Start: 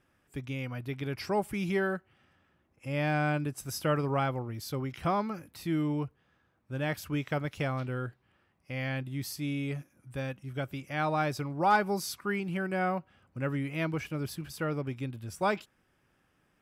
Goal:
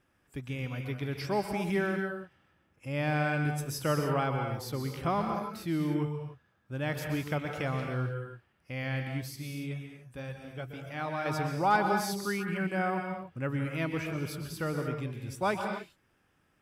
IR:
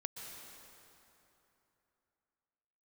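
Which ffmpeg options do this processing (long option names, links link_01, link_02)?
-filter_complex "[1:a]atrim=start_sample=2205,afade=type=out:start_time=0.36:duration=0.01,atrim=end_sample=16317[link_01];[0:a][link_01]afir=irnorm=-1:irlink=0,asettb=1/sr,asplit=3[link_02][link_03][link_04];[link_02]atrim=end=9.214[link_05];[link_03]atrim=start=9.21:end=11.26,asetpts=PTS-STARTPTS,afade=type=in:duration=0.004:curve=qsin,afade=type=out:start_time=2.046:duration=0.004:curve=qsin,flanger=delay=1.8:depth=3.6:regen=-62:speed=1.8:shape=sinusoidal[link_06];[link_04]atrim=start=11.256[link_07];[link_05][link_06]acrossfade=duration=0.004:curve1=hsin:curve2=qsin[link_08];[link_08][link_07]acrossfade=duration=0.004:curve1=qsin:curve2=hsin,volume=2.5dB"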